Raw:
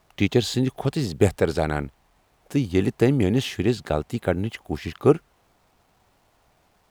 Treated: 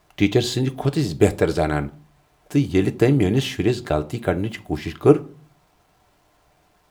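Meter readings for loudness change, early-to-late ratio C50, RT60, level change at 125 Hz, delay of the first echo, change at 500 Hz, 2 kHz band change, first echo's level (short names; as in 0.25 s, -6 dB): +2.5 dB, 20.0 dB, 0.40 s, +2.5 dB, none, +2.5 dB, +2.5 dB, none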